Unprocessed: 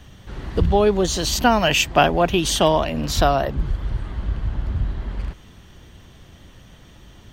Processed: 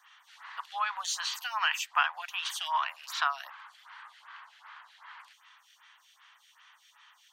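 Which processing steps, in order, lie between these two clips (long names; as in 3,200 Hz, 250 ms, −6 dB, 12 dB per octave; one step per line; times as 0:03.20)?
Butterworth high-pass 950 Hz 48 dB per octave
high-shelf EQ 5,300 Hz −7 dB
downward compressor 2 to 1, threshold −29 dBFS, peak gain reduction 8 dB
dynamic equaliser 1,300 Hz, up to +4 dB, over −41 dBFS, Q 0.9
phaser with staggered stages 2.6 Hz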